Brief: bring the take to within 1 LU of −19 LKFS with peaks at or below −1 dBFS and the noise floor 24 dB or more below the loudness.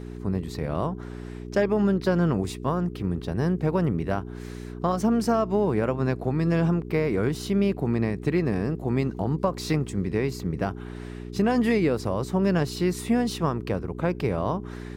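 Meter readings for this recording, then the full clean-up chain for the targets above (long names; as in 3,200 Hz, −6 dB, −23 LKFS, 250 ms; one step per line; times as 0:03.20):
mains hum 60 Hz; hum harmonics up to 420 Hz; level of the hum −35 dBFS; integrated loudness −26.0 LKFS; sample peak −10.5 dBFS; target loudness −19.0 LKFS
→ hum removal 60 Hz, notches 7
level +7 dB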